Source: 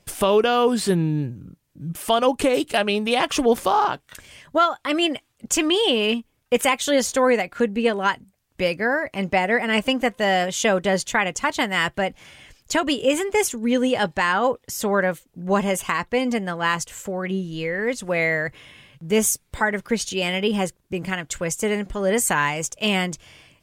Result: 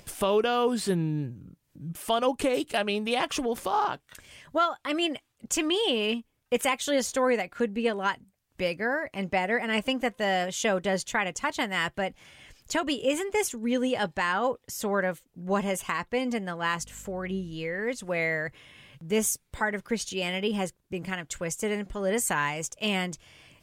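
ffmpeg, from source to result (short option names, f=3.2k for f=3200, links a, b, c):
-filter_complex "[0:a]asettb=1/sr,asplit=3[a][b][c];[a]atrim=end=3.244[d];[b]atrim=start=3.24:end=3.73,asetpts=PTS-STARTPTS,afade=t=in:d=0.004:c=qsin,afade=t=out:st=0.486:d=0.004:c=qsin,acompressor=threshold=-18dB:ratio=3:attack=3.2:release=140:knee=1:detection=peak[e];[c]atrim=start=3.726[f];[d][e]acrossfade=d=0.004:c1=hsin:c2=qsin[g];[g][f]acrossfade=d=0.004:c1=qsin:c2=hsin,asettb=1/sr,asplit=3[h][i][j];[h]atrim=end=16.794[k];[i]atrim=start=16.79:end=17.54,asetpts=PTS-STARTPTS,afade=t=in:d=0.004:c=qsin,afade=t=out:st=0.746:d=0.004:c=qsin,aeval=exprs='val(0)+0.00708*(sin(2*PI*50*n/s)+sin(2*PI*2*50*n/s)/2+sin(2*PI*3*50*n/s)/3+sin(2*PI*4*50*n/s)/4+sin(2*PI*5*50*n/s)/5)':c=same[l];[j]atrim=start=17.536[m];[k][l]acrossfade=d=0.004:c1=hsin:c2=qsin[n];[n][m]acrossfade=d=0.004:c1=qsin:c2=hsin,acompressor=mode=upward:threshold=-37dB:ratio=2.5,volume=-6.5dB"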